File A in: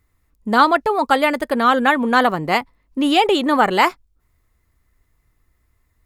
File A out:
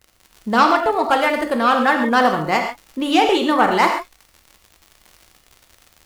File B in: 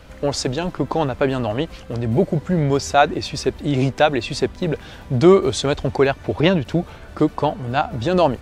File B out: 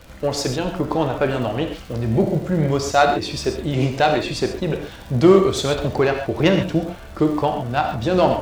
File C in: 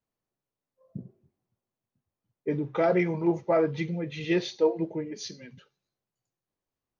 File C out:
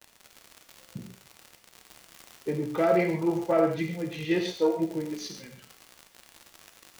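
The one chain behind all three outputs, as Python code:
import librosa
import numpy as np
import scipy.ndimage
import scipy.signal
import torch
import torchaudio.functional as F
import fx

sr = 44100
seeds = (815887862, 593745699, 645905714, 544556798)

y = fx.self_delay(x, sr, depth_ms=0.05)
y = fx.dmg_crackle(y, sr, seeds[0], per_s=110.0, level_db=-31.0)
y = fx.rev_gated(y, sr, seeds[1], gate_ms=160, shape='flat', drr_db=3.5)
y = F.gain(torch.from_numpy(y), -1.5).numpy()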